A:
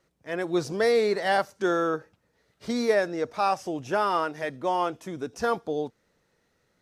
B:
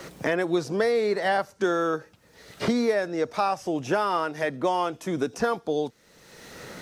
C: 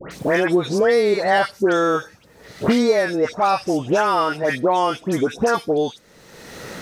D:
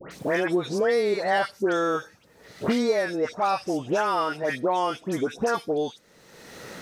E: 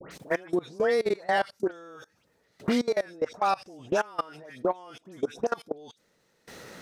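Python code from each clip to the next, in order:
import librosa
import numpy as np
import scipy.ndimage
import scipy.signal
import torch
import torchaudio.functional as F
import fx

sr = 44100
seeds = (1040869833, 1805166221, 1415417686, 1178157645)

y1 = fx.band_squash(x, sr, depth_pct=100)
y2 = fx.dispersion(y1, sr, late='highs', ms=113.0, hz=1700.0)
y2 = y2 * 10.0 ** (7.0 / 20.0)
y3 = fx.low_shelf(y2, sr, hz=100.0, db=-6.0)
y3 = y3 * 10.0 ** (-6.0 / 20.0)
y4 = fx.level_steps(y3, sr, step_db=23)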